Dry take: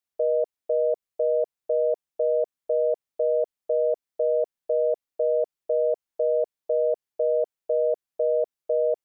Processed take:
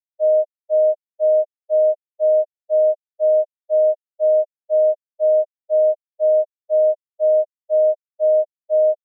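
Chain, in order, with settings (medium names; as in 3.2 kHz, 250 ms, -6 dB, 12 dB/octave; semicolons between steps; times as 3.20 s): band-pass filter 600 Hz, Q 4.2; spectral contrast expander 4:1; trim +8.5 dB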